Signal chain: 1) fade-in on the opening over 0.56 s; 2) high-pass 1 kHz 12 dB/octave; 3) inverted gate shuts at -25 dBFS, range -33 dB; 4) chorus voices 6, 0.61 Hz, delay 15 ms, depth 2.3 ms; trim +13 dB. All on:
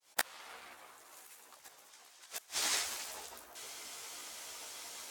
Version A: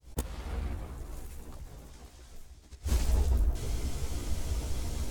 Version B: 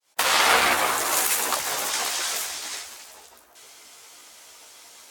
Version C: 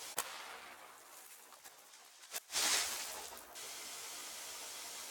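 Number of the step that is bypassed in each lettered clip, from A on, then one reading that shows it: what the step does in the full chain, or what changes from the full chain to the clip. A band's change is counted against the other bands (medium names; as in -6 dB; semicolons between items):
2, 250 Hz band +24.0 dB; 3, momentary loudness spread change -8 LU; 1, crest factor change -7.0 dB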